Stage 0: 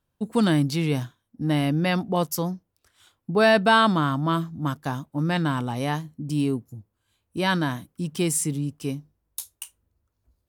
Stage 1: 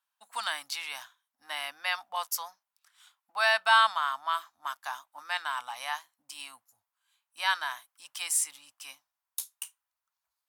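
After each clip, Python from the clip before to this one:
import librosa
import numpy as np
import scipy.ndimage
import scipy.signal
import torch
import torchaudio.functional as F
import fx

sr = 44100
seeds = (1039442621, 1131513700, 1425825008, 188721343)

y = scipy.signal.sosfilt(scipy.signal.cheby2(4, 40, 430.0, 'highpass', fs=sr, output='sos'), x)
y = y * librosa.db_to_amplitude(-1.5)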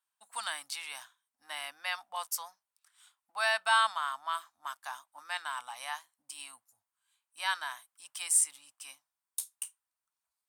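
y = fx.peak_eq(x, sr, hz=8700.0, db=10.0, octaves=0.28)
y = y * librosa.db_to_amplitude(-4.5)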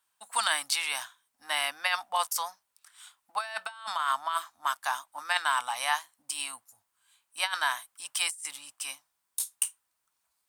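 y = fx.over_compress(x, sr, threshold_db=-35.0, ratio=-0.5)
y = y * librosa.db_to_amplitude(7.0)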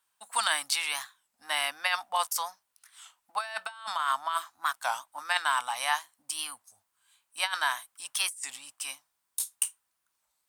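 y = fx.record_warp(x, sr, rpm=33.33, depth_cents=160.0)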